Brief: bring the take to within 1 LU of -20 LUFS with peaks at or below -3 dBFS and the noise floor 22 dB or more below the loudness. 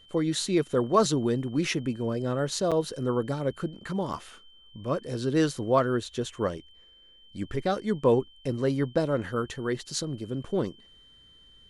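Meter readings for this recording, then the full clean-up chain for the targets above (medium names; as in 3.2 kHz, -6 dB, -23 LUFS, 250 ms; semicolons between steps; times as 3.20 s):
dropouts 2; longest dropout 6.6 ms; steady tone 3.1 kHz; tone level -54 dBFS; loudness -28.0 LUFS; peak level -9.0 dBFS; loudness target -20.0 LUFS
-> interpolate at 2.71/4.13 s, 6.6 ms; band-stop 3.1 kHz, Q 30; trim +8 dB; peak limiter -3 dBFS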